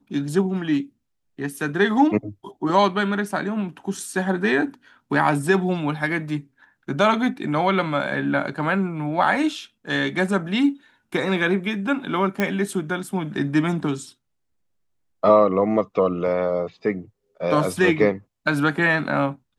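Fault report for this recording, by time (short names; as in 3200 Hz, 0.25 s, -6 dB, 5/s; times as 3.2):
12.4 pop -9 dBFS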